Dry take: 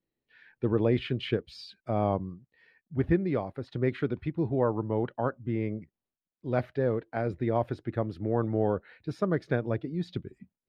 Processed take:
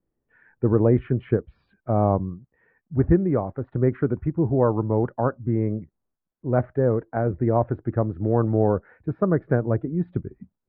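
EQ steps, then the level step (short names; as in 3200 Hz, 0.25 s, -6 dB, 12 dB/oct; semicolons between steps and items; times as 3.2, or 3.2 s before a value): LPF 1500 Hz 24 dB/oct; low shelf 67 Hz +10.5 dB; +6.0 dB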